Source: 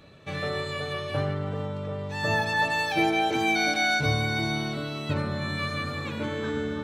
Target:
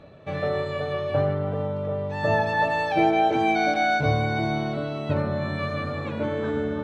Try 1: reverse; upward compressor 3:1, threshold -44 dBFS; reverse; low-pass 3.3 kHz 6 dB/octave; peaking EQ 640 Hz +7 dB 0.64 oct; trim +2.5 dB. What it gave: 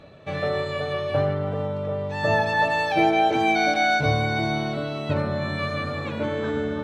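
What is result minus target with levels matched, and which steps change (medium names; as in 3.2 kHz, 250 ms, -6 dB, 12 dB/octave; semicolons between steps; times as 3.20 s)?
4 kHz band +4.0 dB
change: low-pass 1.5 kHz 6 dB/octave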